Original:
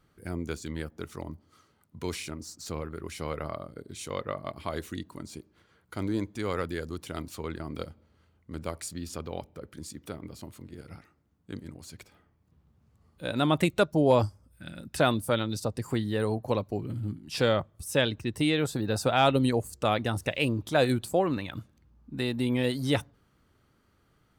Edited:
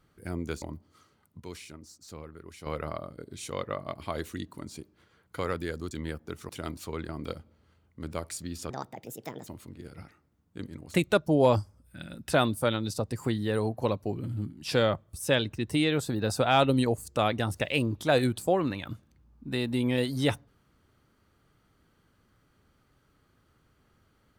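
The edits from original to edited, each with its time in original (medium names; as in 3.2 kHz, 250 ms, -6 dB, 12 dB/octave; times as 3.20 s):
0.62–1.20 s: move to 7.00 s
1.98–3.24 s: gain -8.5 dB
5.97–6.48 s: delete
9.21–10.40 s: speed 155%
11.87–13.60 s: delete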